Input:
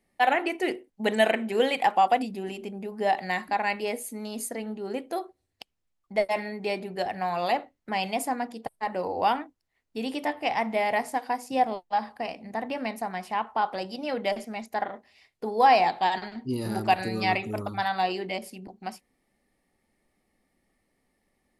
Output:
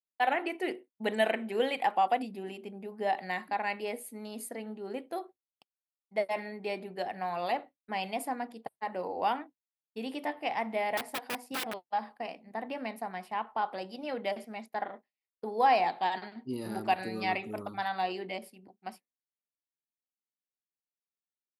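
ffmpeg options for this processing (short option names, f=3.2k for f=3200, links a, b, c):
-filter_complex "[0:a]asettb=1/sr,asplit=3[a][b][c];[a]atrim=end=10.974[d];[b]atrim=start=10.97:end=11.9,asetpts=PTS-STARTPTS,afade=t=in:d=0.004:c=qsin,afade=t=out:st=0.926:d=0.004:c=qsin,aeval=exprs='(mod(13.3*val(0)+1,2)-1)/13.3':c=same[e];[c]atrim=start=11.896[f];[d][e]acrossfade=d=0.004:c1=hsin:c2=qsin[g];[g][f]acrossfade=d=0.004:c1=qsin:c2=hsin,highpass=160,agate=range=-33dB:threshold=-37dB:ratio=3:detection=peak,equalizer=f=6.5k:w=1.9:g=-9,volume=-5.5dB"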